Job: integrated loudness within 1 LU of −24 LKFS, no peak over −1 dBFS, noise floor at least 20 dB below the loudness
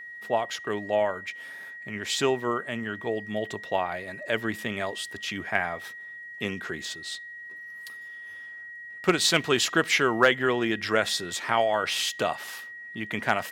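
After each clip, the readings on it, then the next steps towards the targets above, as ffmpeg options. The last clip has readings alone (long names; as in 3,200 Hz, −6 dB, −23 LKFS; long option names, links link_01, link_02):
interfering tone 1,900 Hz; level of the tone −39 dBFS; integrated loudness −27.0 LKFS; sample peak −7.0 dBFS; target loudness −24.0 LKFS
→ -af "bandreject=frequency=1900:width=30"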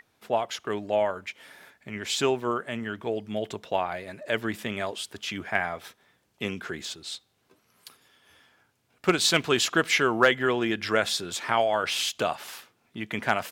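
interfering tone none found; integrated loudness −27.0 LKFS; sample peak −7.0 dBFS; target loudness −24.0 LKFS
→ -af "volume=3dB"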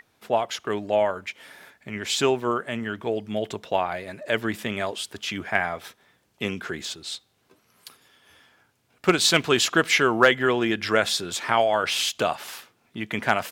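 integrated loudness −24.0 LKFS; sample peak −4.0 dBFS; background noise floor −67 dBFS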